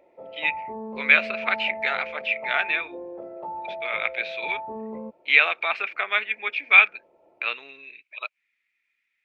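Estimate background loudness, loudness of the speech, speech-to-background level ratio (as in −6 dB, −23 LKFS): −36.0 LKFS, −22.0 LKFS, 14.0 dB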